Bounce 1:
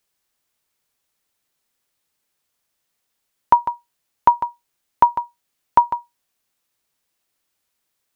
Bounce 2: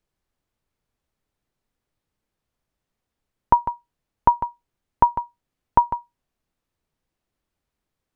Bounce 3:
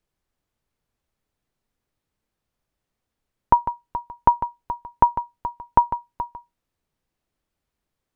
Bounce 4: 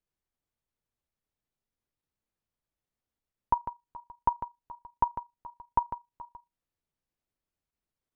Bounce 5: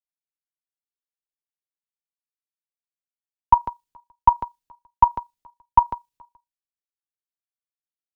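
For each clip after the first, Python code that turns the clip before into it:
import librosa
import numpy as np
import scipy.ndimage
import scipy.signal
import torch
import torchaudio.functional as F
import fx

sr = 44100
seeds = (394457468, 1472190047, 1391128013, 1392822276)

y1 = fx.tilt_eq(x, sr, slope=-3.5)
y1 = F.gain(torch.from_numpy(y1), -3.0).numpy()
y2 = y1 + 10.0 ** (-13.0 / 20.0) * np.pad(y1, (int(426 * sr / 1000.0), 0))[:len(y1)]
y3 = fx.level_steps(y2, sr, step_db=12)
y3 = F.gain(torch.from_numpy(y3), -8.5).numpy()
y4 = fx.band_widen(y3, sr, depth_pct=100)
y4 = F.gain(torch.from_numpy(y4), 6.0).numpy()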